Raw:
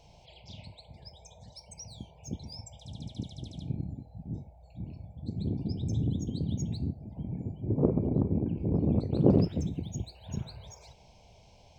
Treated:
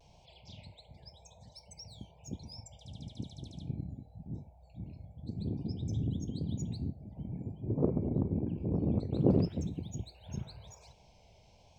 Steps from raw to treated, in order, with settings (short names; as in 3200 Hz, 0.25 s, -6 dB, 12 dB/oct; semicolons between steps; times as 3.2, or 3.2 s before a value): vibrato 0.95 Hz 50 cents; gain -4 dB